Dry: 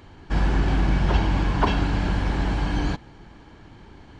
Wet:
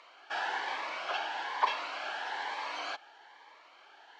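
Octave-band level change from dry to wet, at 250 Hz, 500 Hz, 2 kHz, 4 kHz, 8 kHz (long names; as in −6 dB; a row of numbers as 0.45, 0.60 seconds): −31.5 dB, −12.0 dB, −3.5 dB, −3.5 dB, can't be measured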